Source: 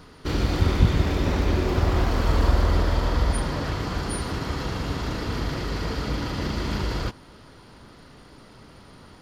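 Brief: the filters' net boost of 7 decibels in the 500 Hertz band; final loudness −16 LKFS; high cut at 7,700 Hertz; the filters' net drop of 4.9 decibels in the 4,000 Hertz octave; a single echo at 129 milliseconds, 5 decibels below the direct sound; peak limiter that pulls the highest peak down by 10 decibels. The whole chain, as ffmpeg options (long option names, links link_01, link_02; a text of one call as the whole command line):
ffmpeg -i in.wav -af "lowpass=7700,equalizer=frequency=500:width_type=o:gain=9,equalizer=frequency=4000:width_type=o:gain=-6,alimiter=limit=-14dB:level=0:latency=1,aecho=1:1:129:0.562,volume=8.5dB" out.wav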